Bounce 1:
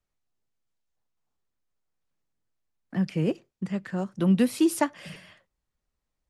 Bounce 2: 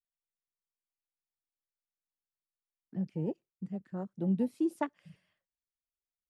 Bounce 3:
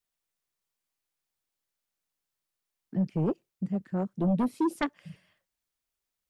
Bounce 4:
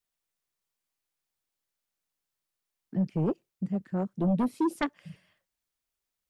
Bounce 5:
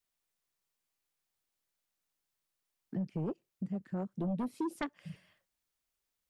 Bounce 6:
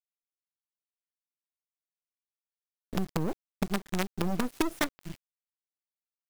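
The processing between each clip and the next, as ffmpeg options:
-af "afwtdn=0.0224,volume=-8.5dB"
-af "aeval=exprs='0.106*sin(PI/2*2.24*val(0)/0.106)':c=same,volume=-2dB"
-af anull
-af "acompressor=threshold=-37dB:ratio=2.5"
-af "acrusher=bits=6:dc=4:mix=0:aa=0.000001,volume=8dB"

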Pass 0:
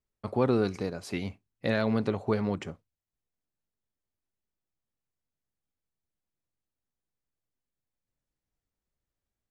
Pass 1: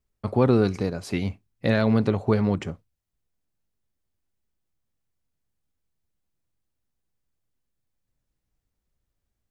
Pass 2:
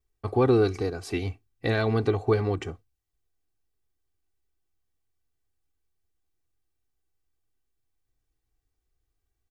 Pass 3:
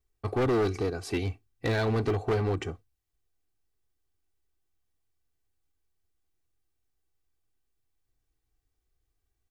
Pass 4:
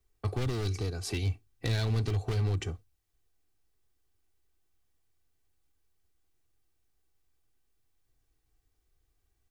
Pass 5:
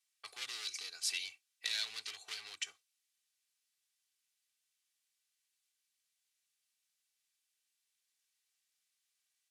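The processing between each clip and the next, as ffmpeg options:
-af "lowshelf=f=170:g=7.5,volume=4dB"
-af "aecho=1:1:2.6:0.75,volume=-3dB"
-af "asoftclip=type=hard:threshold=-22.5dB"
-filter_complex "[0:a]acrossover=split=140|3000[a][b][c];[b]acompressor=threshold=-43dB:ratio=4[d];[a][d][c]amix=inputs=3:normalize=0,volume=4dB"
-af "asuperpass=centerf=5600:order=4:qfactor=0.6,volume=3.5dB"

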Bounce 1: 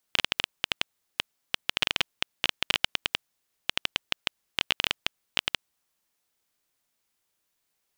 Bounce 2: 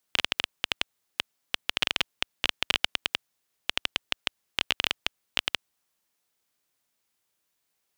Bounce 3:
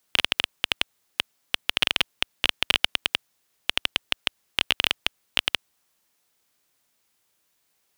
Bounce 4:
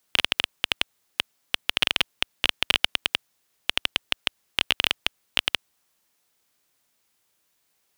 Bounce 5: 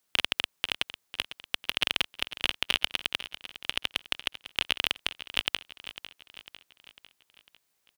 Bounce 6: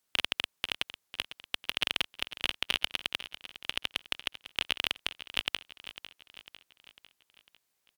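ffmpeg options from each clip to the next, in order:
-af "highpass=f=55:p=1"
-af "acontrast=71"
-af anull
-af "aecho=1:1:500|1000|1500|2000|2500:0.2|0.102|0.0519|0.0265|0.0135,volume=-4.5dB"
-af "volume=-3dB" -ar 48000 -c:a libvorbis -b:a 192k

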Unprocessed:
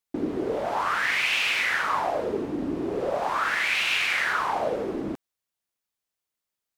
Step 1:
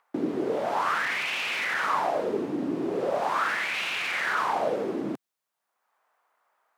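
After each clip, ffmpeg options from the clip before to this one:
-filter_complex "[0:a]highpass=f=130:w=0.5412,highpass=f=130:w=1.3066,acrossover=split=710|1300[a][b][c];[b]acompressor=mode=upward:threshold=-47dB:ratio=2.5[d];[c]alimiter=limit=-23.5dB:level=0:latency=1:release=24[e];[a][d][e]amix=inputs=3:normalize=0"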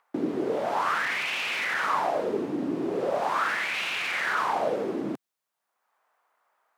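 -af anull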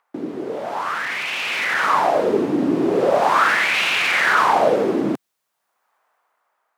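-af "dynaudnorm=f=460:g=7:m=11.5dB"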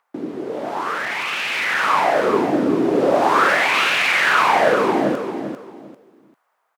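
-af "aecho=1:1:396|792|1188:0.447|0.107|0.0257"

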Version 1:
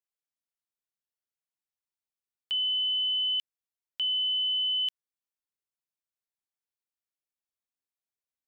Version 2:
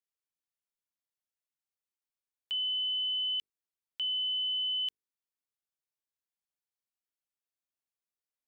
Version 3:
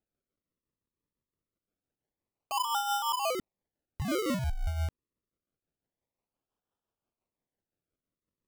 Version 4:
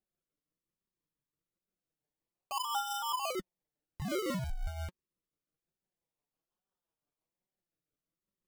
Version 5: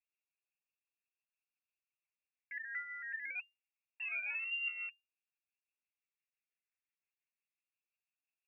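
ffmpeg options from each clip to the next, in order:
-af "bandreject=f=50:t=h:w=6,bandreject=f=100:t=h:w=6,bandreject=f=150:t=h:w=6,bandreject=f=200:t=h:w=6,bandreject=f=250:t=h:w=6,bandreject=f=300:t=h:w=6,bandreject=f=350:t=h:w=6,bandreject=f=400:t=h:w=6,bandreject=f=450:t=h:w=6,volume=-4dB"
-af "tremolo=f=5.8:d=0.48,acrusher=samples=40:mix=1:aa=0.000001:lfo=1:lforange=40:lforate=0.26,volume=3.5dB"
-af "flanger=delay=5.1:depth=1.8:regen=31:speed=1.2:shape=triangular"
-af "lowpass=f=2.4k:t=q:w=0.5098,lowpass=f=2.4k:t=q:w=0.6013,lowpass=f=2.4k:t=q:w=0.9,lowpass=f=2.4k:t=q:w=2.563,afreqshift=-2800,aderivative,volume=4.5dB"

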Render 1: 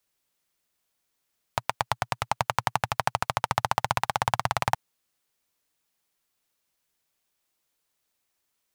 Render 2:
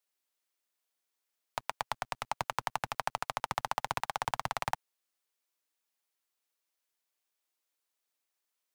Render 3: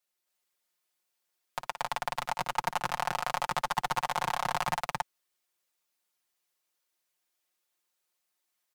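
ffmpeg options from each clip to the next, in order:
-filter_complex "[0:a]lowshelf=f=340:g=-3.5,acrossover=split=220[a][b];[a]acrusher=bits=6:dc=4:mix=0:aa=0.000001[c];[c][b]amix=inputs=2:normalize=0,volume=-7.5dB"
-filter_complex "[0:a]aecho=1:1:5.6:0.74,asplit=2[a][b];[b]aecho=0:1:55.39|268.2:0.316|1[c];[a][c]amix=inputs=2:normalize=0,volume=-1dB"

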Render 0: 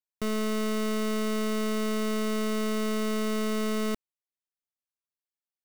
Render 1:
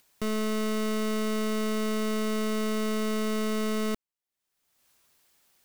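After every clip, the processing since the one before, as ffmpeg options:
-af "acompressor=mode=upward:threshold=-43dB:ratio=2.5"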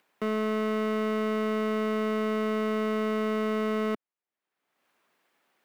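-filter_complex "[0:a]acrossover=split=180 2700:gain=0.0631 1 0.126[a][b][c];[a][b][c]amix=inputs=3:normalize=0,volume=3dB"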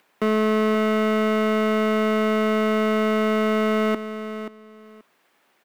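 -af "aecho=1:1:531|1062:0.282|0.0507,volume=8dB"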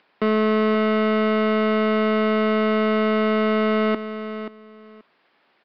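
-af "aresample=11025,aresample=44100,volume=1dB"

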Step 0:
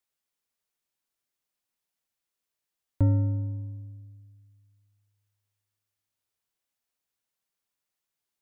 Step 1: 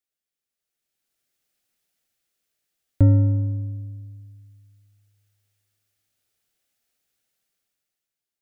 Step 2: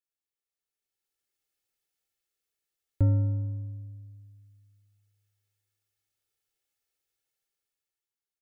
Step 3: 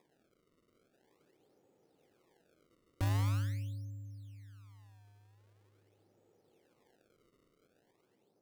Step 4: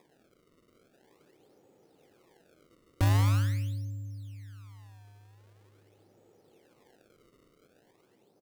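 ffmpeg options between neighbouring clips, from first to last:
-af "equalizer=f=1k:t=o:w=0.34:g=-11.5,dynaudnorm=f=150:g=13:m=13dB,volume=-3.5dB"
-af "aecho=1:1:2.3:0.51,volume=-9dB"
-filter_complex "[0:a]acrossover=split=130|690[a][b][c];[b]acompressor=mode=upward:threshold=-40dB:ratio=2.5[d];[a][d][c]amix=inputs=3:normalize=0,alimiter=limit=-23dB:level=0:latency=1,acrusher=samples=30:mix=1:aa=0.000001:lfo=1:lforange=48:lforate=0.44,volume=-3.5dB"
-af "aecho=1:1:101|202|303:0.112|0.0482|0.0207,volume=8dB"

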